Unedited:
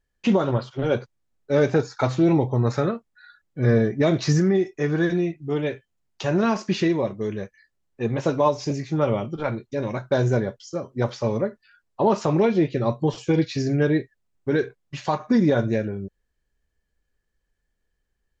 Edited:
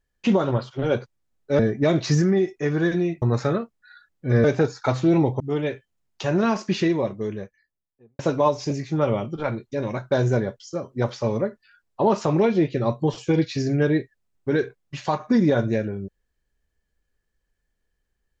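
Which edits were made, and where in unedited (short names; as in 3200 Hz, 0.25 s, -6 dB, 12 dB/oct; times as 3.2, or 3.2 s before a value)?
1.59–2.55 swap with 3.77–5.4
7.04–8.19 studio fade out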